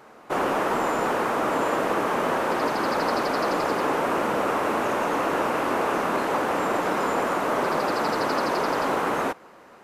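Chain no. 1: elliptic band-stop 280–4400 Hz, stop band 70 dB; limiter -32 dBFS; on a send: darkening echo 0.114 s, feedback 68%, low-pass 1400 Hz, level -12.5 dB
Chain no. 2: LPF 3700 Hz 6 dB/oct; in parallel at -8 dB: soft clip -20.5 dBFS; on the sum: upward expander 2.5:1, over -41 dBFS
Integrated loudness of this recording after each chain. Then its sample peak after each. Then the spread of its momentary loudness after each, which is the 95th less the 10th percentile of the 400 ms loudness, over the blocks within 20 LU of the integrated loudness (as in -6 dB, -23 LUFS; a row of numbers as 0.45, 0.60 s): -40.0, -25.0 LUFS; -29.0, -12.0 dBFS; 1, 1 LU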